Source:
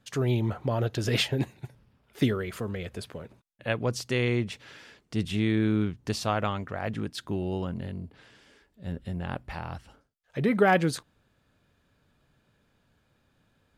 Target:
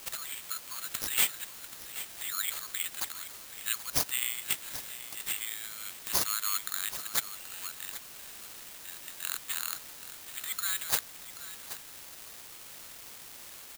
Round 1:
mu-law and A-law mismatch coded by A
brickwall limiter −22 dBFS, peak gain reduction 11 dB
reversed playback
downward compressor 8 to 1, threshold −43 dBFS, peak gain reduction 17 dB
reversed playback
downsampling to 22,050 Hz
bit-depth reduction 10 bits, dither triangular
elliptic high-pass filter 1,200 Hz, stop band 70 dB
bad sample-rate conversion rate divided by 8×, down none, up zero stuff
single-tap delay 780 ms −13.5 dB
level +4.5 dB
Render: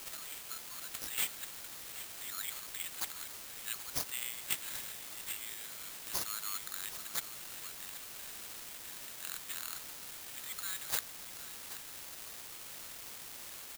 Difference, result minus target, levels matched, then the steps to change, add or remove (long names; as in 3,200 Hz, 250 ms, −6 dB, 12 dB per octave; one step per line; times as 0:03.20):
downward compressor: peak gain reduction +8.5 dB
change: downward compressor 8 to 1, threshold −33.5 dBFS, peak gain reduction 8.5 dB